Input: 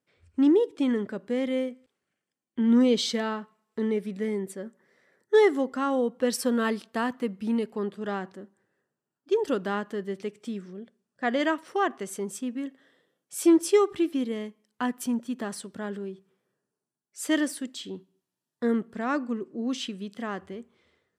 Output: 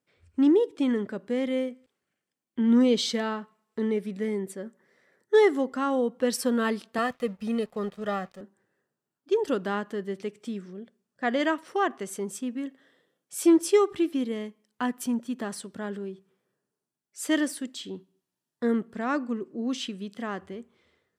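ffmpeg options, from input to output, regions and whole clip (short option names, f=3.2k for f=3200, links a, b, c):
-filter_complex "[0:a]asettb=1/sr,asplit=3[a][b][c];[a]atrim=end=6.984[d];[b]atrim=start=6.98:end=8.41,asetpts=PTS-STARTPTS,afade=t=in:d=0.004:c=qsin,afade=t=out:st=1.426:d=0.004:c=qsin,aecho=1:1:1.6:0.94,atrim=end_sample=63063,aeval=exprs='sgn(val(0))*max(abs(val(0))-0.00237,0)':c=same[e];[c]atrim=start=8.406[f];[d][e]acrossfade=d=0.004:c1=hsin:c2=qsin[g];[g][f]acrossfade=d=0.004:c1=qsin:c2=hsin"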